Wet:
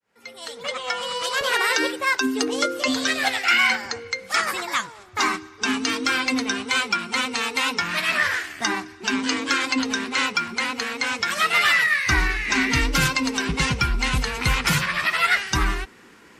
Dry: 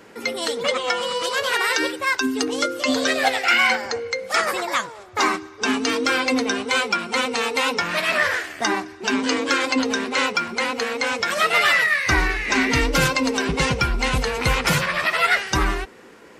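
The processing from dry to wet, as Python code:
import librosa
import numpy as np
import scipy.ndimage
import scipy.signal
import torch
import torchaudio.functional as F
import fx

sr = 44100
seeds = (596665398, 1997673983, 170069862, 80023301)

y = fx.fade_in_head(x, sr, length_s=1.28)
y = fx.peak_eq(y, sr, hz=fx.steps((0.0, 330.0), (1.41, 71.0), (2.88, 540.0)), db=-10.5, octaves=1.1)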